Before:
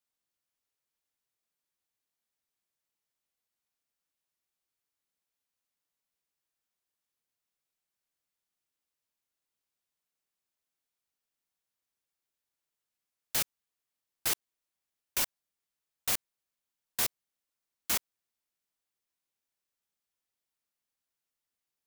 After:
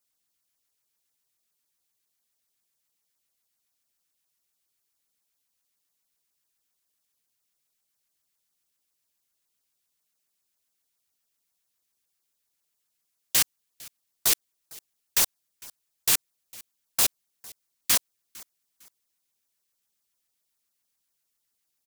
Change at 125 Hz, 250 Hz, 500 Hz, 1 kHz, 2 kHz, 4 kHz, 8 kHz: +4.0 dB, +4.0 dB, +4.0 dB, +4.5 dB, +6.0 dB, +8.5 dB, +9.5 dB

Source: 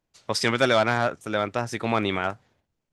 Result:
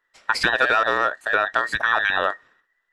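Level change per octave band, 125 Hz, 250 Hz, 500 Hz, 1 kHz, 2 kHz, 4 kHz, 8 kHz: -12.0 dB, -9.0 dB, -2.0 dB, +5.0 dB, +9.0 dB, +1.5 dB, no reading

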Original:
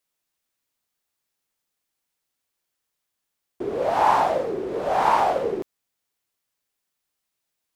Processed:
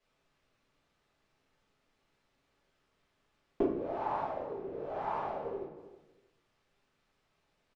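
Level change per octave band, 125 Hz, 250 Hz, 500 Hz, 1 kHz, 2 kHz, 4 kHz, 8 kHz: -9.5 dB, -6.0 dB, -12.0 dB, -16.5 dB, -18.5 dB, under -20 dB, no reading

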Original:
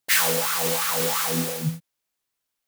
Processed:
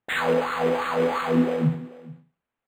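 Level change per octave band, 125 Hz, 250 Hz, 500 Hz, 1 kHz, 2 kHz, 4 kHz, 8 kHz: +2.5 dB, +7.5 dB, +6.0 dB, +2.5 dB, -2.0 dB, -10.0 dB, under -20 dB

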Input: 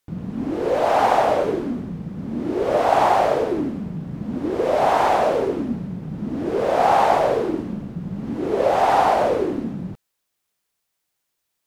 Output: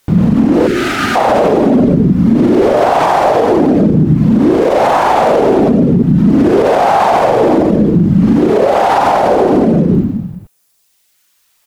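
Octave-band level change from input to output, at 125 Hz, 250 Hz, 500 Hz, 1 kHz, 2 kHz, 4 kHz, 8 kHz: +18.5 dB, +16.5 dB, +9.5 dB, +7.5 dB, +9.5 dB, +9.5 dB, no reading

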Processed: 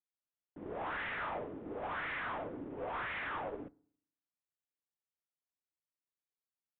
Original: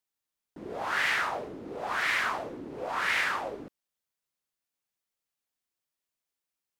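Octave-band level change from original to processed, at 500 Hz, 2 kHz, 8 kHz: -4.5 dB, -11.5 dB, under -35 dB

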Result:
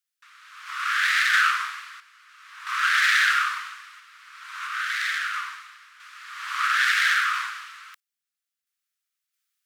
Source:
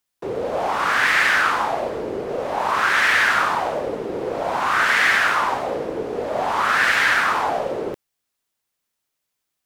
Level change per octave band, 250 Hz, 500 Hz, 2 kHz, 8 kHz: under -40 dB, under -40 dB, -4.0 dB, -2.0 dB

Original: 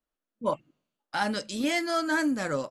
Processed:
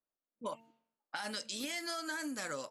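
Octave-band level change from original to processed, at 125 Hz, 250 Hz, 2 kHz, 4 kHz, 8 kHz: -16.5 dB, -14.5 dB, -10.0 dB, -5.5 dB, -3.0 dB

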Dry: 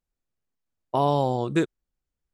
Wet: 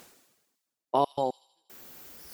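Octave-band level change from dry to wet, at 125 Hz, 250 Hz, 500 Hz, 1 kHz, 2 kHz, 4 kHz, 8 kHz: -18.0 dB, -12.5 dB, -5.5 dB, -3.5 dB, under -15 dB, -5.5 dB, no reading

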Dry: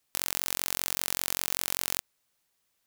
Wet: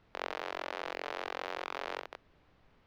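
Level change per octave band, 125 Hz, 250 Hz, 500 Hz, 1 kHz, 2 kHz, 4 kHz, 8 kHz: under -15 dB, -3.0 dB, +5.5 dB, +3.0 dB, -2.5 dB, -11.0 dB, -29.5 dB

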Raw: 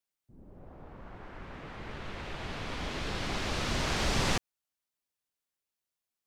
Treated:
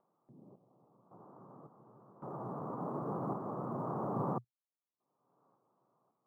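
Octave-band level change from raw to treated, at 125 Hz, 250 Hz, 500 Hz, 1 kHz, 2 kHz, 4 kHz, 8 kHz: -5.5 dB, -2.0 dB, -2.0 dB, -2.5 dB, -28.5 dB, under -40 dB, under -35 dB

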